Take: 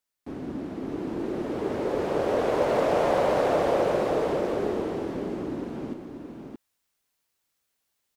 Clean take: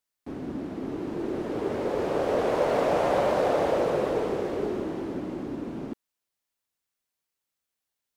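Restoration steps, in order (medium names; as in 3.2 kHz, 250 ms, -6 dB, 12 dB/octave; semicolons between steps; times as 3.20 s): inverse comb 624 ms -6 dB; gain correction -6.5 dB, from 5.95 s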